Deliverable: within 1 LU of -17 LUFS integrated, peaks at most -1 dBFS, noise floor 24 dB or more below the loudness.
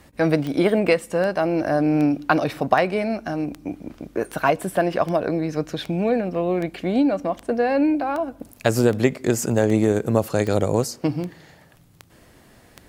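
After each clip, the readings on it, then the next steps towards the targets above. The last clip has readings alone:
clicks 17; loudness -22.0 LUFS; peak -2.0 dBFS; loudness target -17.0 LUFS
-> de-click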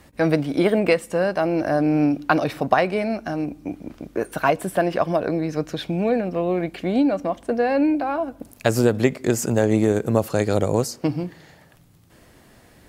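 clicks 0; loudness -22.0 LUFS; peak -2.0 dBFS; loudness target -17.0 LUFS
-> gain +5 dB; limiter -1 dBFS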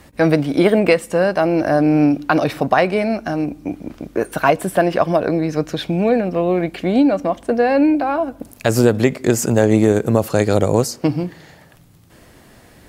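loudness -17.0 LUFS; peak -1.0 dBFS; noise floor -47 dBFS

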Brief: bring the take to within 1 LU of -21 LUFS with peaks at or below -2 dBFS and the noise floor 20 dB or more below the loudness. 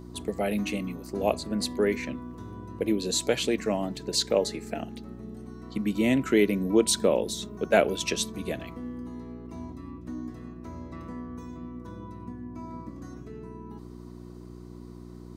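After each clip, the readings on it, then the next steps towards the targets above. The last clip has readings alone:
hum 60 Hz; harmonics up to 360 Hz; hum level -41 dBFS; loudness -28.0 LUFS; peak -8.5 dBFS; loudness target -21.0 LUFS
-> de-hum 60 Hz, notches 6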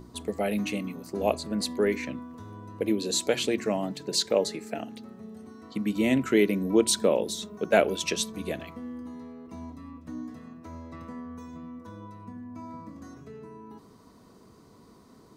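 hum none; loudness -27.5 LUFS; peak -9.0 dBFS; loudness target -21.0 LUFS
-> gain +6.5 dB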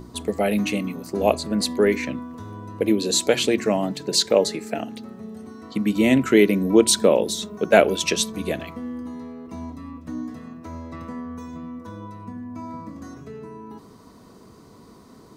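loudness -21.0 LUFS; peak -2.5 dBFS; noise floor -48 dBFS

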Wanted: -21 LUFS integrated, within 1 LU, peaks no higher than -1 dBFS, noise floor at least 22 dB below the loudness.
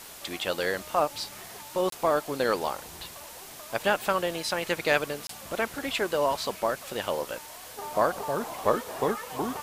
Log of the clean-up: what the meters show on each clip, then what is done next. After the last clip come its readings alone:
dropouts 2; longest dropout 23 ms; noise floor -45 dBFS; noise floor target -51 dBFS; loudness -29.0 LUFS; peak -8.0 dBFS; loudness target -21.0 LUFS
-> interpolate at 1.9/5.27, 23 ms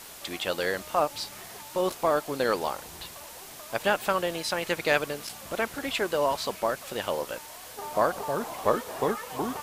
dropouts 0; noise floor -45 dBFS; noise floor target -51 dBFS
-> noise print and reduce 6 dB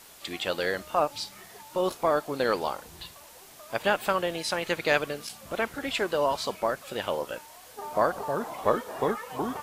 noise floor -50 dBFS; noise floor target -51 dBFS
-> noise print and reduce 6 dB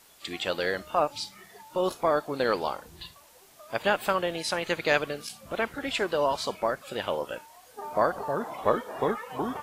noise floor -55 dBFS; loudness -29.0 LUFS; peak -7.5 dBFS; loudness target -21.0 LUFS
-> gain +8 dB; limiter -1 dBFS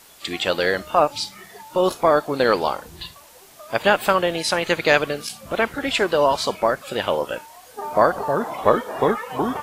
loudness -21.0 LUFS; peak -1.0 dBFS; noise floor -47 dBFS

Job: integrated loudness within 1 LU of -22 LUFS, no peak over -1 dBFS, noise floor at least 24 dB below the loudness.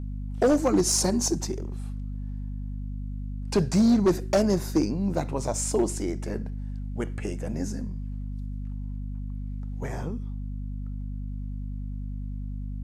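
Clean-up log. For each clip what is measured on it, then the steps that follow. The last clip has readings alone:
clipped 0.9%; flat tops at -15.5 dBFS; hum 50 Hz; harmonics up to 250 Hz; hum level -31 dBFS; loudness -28.5 LUFS; peak -15.5 dBFS; loudness target -22.0 LUFS
-> clip repair -15.5 dBFS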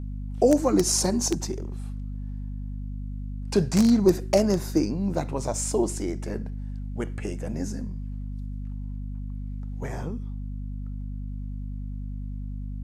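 clipped 0.0%; hum 50 Hz; harmonics up to 250 Hz; hum level -30 dBFS
-> notches 50/100/150/200/250 Hz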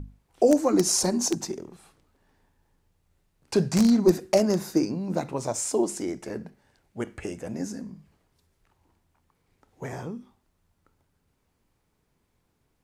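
hum none; loudness -25.0 LUFS; peak -6.0 dBFS; loudness target -22.0 LUFS
-> gain +3 dB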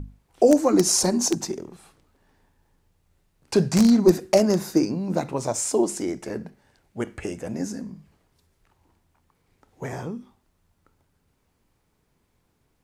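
loudness -22.5 LUFS; peak -3.0 dBFS; noise floor -70 dBFS

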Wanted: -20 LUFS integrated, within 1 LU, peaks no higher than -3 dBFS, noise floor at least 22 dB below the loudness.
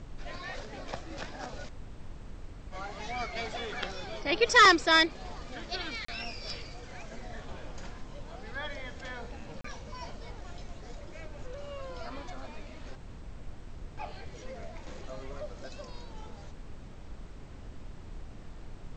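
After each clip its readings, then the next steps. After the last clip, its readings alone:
dropouts 2; longest dropout 34 ms; noise floor -47 dBFS; noise floor target -52 dBFS; loudness -29.5 LUFS; peak -11.0 dBFS; loudness target -20.0 LUFS
-> interpolate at 6.05/9.61, 34 ms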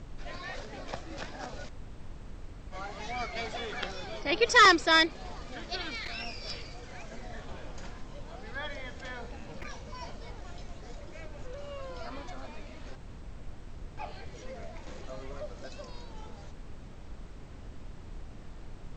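dropouts 0; noise floor -47 dBFS; noise floor target -52 dBFS
-> noise print and reduce 6 dB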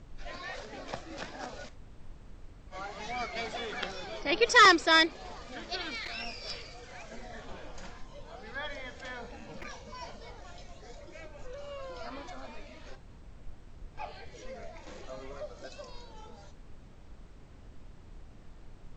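noise floor -52 dBFS; loudness -29.0 LUFS; peak -11.0 dBFS; loudness target -20.0 LUFS
-> gain +9 dB; limiter -3 dBFS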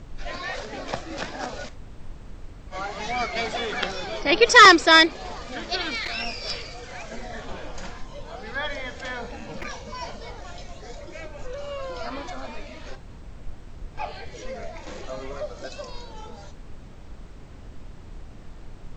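loudness -20.5 LUFS; peak -3.0 dBFS; noise floor -43 dBFS

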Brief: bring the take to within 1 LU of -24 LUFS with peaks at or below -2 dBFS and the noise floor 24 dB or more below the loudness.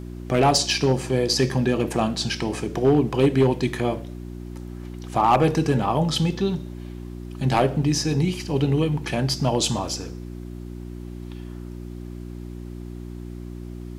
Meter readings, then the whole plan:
clipped 0.3%; flat tops at -10.5 dBFS; hum 60 Hz; harmonics up to 360 Hz; hum level -32 dBFS; loudness -22.0 LUFS; peak -10.5 dBFS; loudness target -24.0 LUFS
-> clip repair -10.5 dBFS; de-hum 60 Hz, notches 6; gain -2 dB

